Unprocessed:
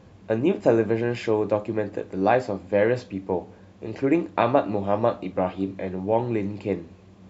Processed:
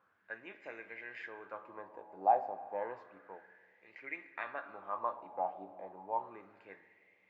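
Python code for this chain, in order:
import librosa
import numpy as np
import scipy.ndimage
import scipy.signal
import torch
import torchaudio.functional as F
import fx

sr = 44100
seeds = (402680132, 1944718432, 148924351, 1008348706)

y = fx.rev_spring(x, sr, rt60_s=2.9, pass_ms=(47, 59), chirp_ms=20, drr_db=12.0)
y = fx.wah_lfo(y, sr, hz=0.31, low_hz=780.0, high_hz=2100.0, q=6.7)
y = y * librosa.db_to_amplitude(-2.0)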